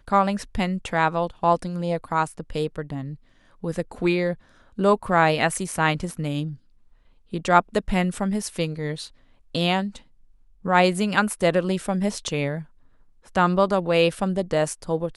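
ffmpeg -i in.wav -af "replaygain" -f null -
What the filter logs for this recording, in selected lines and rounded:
track_gain = +2.6 dB
track_peak = 0.531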